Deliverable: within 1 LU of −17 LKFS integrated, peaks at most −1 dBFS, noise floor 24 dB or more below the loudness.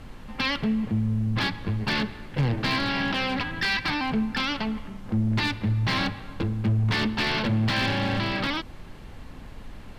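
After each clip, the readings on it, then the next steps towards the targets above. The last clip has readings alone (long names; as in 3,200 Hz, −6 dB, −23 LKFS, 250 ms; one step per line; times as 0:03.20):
share of clipped samples 0.9%; peaks flattened at −18.0 dBFS; background noise floor −42 dBFS; target noise floor −50 dBFS; integrated loudness −26.0 LKFS; sample peak −18.0 dBFS; target loudness −17.0 LKFS
→ clipped peaks rebuilt −18 dBFS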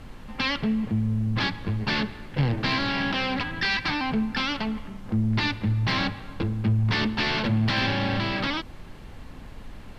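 share of clipped samples 0.0%; background noise floor −42 dBFS; target noise floor −50 dBFS
→ noise reduction from a noise print 8 dB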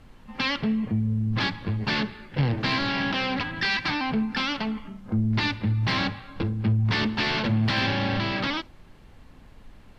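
background noise floor −50 dBFS; integrated loudness −26.0 LKFS; sample peak −11.5 dBFS; target loudness −17.0 LKFS
→ level +9 dB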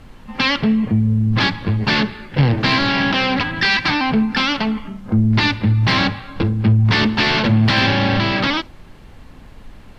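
integrated loudness −17.0 LKFS; sample peak −2.5 dBFS; background noise floor −41 dBFS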